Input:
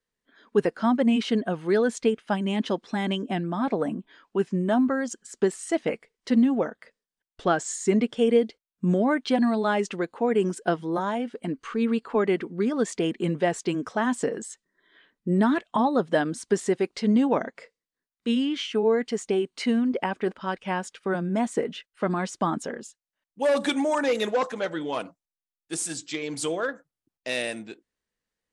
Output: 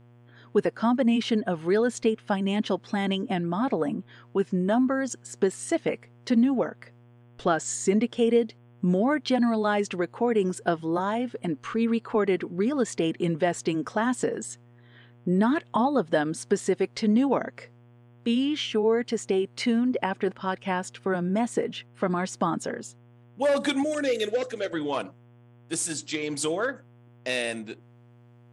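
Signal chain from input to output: 23.83–24.73 fixed phaser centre 390 Hz, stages 4; buzz 120 Hz, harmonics 29, -56 dBFS -8 dB/oct; in parallel at -1 dB: compressor, threshold -27 dBFS, peak gain reduction 12 dB; on the sum: gain -3.5 dB

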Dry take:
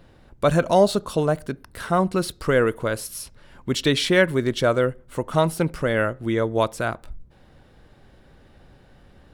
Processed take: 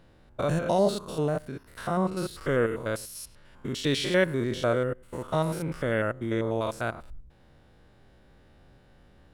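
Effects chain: stepped spectrum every 0.1 s; gain -4 dB

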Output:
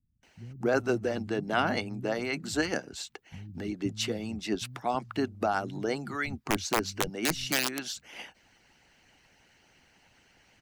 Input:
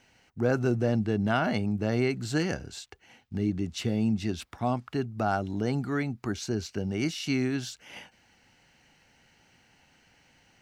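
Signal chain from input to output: 6.16–7.56 wrapped overs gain 20 dB; bands offset in time lows, highs 0.23 s, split 160 Hz; harmonic-percussive split harmonic -14 dB; gain +4.5 dB

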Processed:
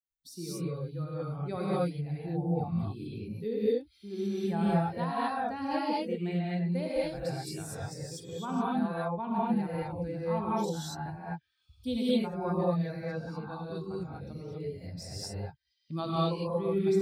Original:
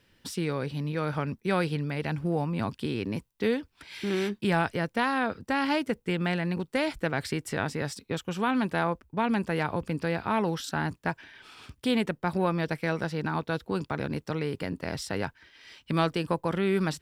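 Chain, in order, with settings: per-bin expansion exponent 2; band shelf 2000 Hz -9.5 dB 1.3 oct; non-linear reverb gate 0.27 s rising, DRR -8 dB; gain -6 dB

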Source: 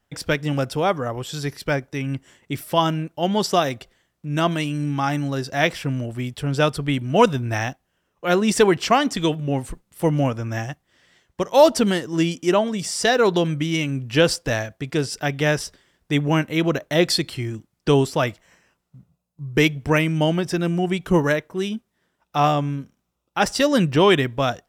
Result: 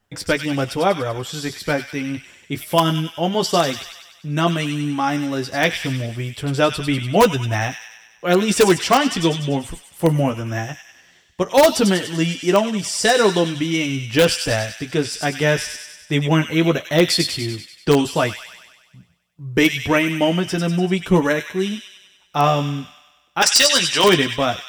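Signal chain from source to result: flange 0.15 Hz, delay 9.6 ms, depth 2.6 ms, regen -29%; 23.42–24.04 weighting filter ITU-R 468; thin delay 97 ms, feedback 60%, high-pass 2400 Hz, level -4 dB; in parallel at -6.5 dB: wrapped overs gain 10 dB; on the sum: gain +2.5 dB

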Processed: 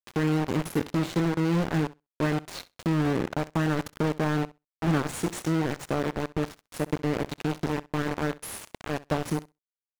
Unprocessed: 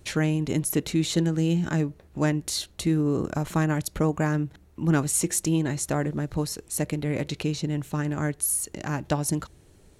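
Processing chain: spectral trails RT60 0.30 s; 6.81–7.22 transient shaper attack +8 dB, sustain -7 dB; HPF 48 Hz 12 dB/oct; bit-crush 4-bit; LPF 1700 Hz 6 dB/oct; flutter echo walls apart 11.1 m, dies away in 0.2 s; gain -2.5 dB

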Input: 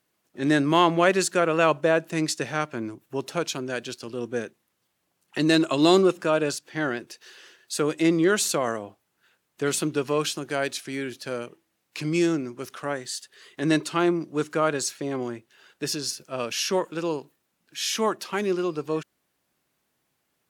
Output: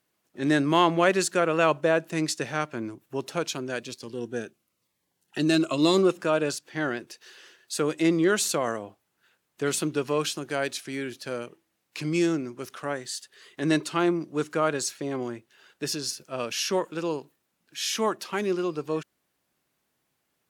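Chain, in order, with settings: 3.8–5.98 cascading phaser falling 1 Hz; gain -1.5 dB

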